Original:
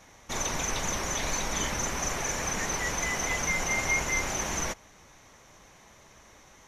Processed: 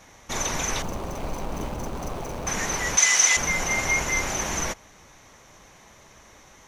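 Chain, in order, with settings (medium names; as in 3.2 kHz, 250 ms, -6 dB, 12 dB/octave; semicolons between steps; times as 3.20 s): 0.82–2.47 s: median filter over 25 samples; 2.97–3.37 s: frequency weighting ITU-R 468; trim +3.5 dB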